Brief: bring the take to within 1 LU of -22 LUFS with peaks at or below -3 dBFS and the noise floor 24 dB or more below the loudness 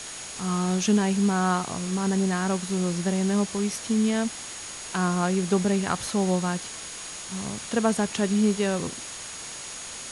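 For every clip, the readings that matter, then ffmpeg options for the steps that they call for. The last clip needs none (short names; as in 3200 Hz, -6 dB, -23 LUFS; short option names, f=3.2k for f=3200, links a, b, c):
steady tone 6700 Hz; tone level -41 dBFS; noise floor -38 dBFS; noise floor target -50 dBFS; loudness -26.0 LUFS; peak -11.0 dBFS; loudness target -22.0 LUFS
-> -af "bandreject=f=6.7k:w=30"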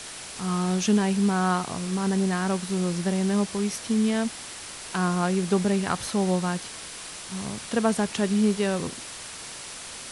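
steady tone none; noise floor -40 dBFS; noise floor target -50 dBFS
-> -af "afftdn=nr=10:nf=-40"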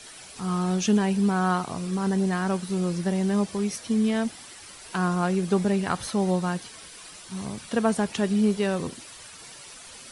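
noise floor -45 dBFS; noise floor target -50 dBFS
-> -af "afftdn=nr=6:nf=-45"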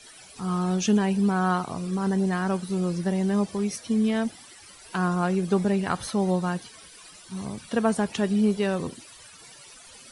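noise floor -49 dBFS; noise floor target -50 dBFS
-> -af "afftdn=nr=6:nf=-49"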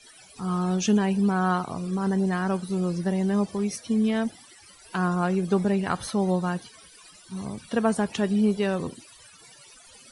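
noise floor -52 dBFS; loudness -26.0 LUFS; peak -11.5 dBFS; loudness target -22.0 LUFS
-> -af "volume=4dB"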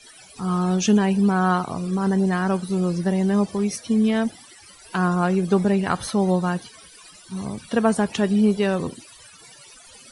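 loudness -22.0 LUFS; peak -7.5 dBFS; noise floor -48 dBFS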